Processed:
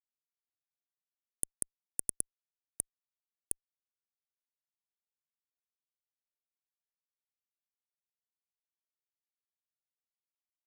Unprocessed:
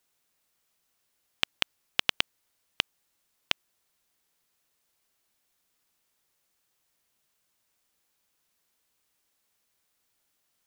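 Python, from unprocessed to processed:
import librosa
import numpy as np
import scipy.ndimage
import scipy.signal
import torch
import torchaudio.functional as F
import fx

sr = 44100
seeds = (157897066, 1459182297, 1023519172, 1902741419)

y = fx.spec_gate(x, sr, threshold_db=-30, keep='weak')
y = scipy.signal.sosfilt(scipy.signal.ellip(3, 1.0, 40, [1200.0, 3500.0], 'bandstop', fs=sr, output='sos'), y)
y = fx.high_shelf(y, sr, hz=11000.0, db=-4.0)
y = fx.fuzz(y, sr, gain_db=60.0, gate_db=-58.0)
y = fx.env_phaser(y, sr, low_hz=160.0, high_hz=3700.0, full_db=-38.5)
y = y * librosa.db_to_amplitude(-1.5)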